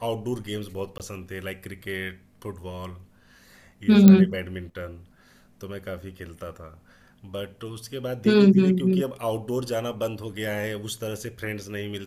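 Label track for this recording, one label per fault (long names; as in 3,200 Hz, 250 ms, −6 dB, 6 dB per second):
0.980000	1.000000	drop-out 18 ms
4.080000	4.080000	click −3 dBFS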